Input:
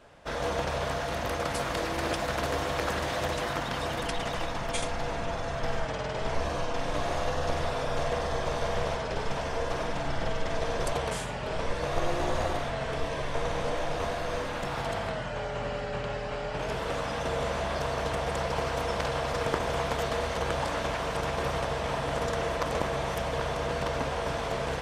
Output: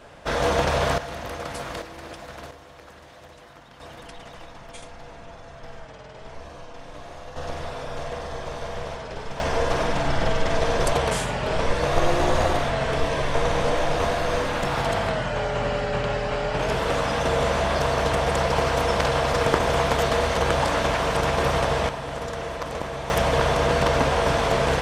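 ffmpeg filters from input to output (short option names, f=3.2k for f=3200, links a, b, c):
-af "asetnsamples=n=441:p=0,asendcmd='0.98 volume volume -2dB;1.82 volume volume -9dB;2.51 volume volume -16.5dB;3.8 volume volume -10dB;7.36 volume volume -2.5dB;9.4 volume volume 8dB;21.89 volume volume -1dB;23.1 volume volume 10dB',volume=8.5dB"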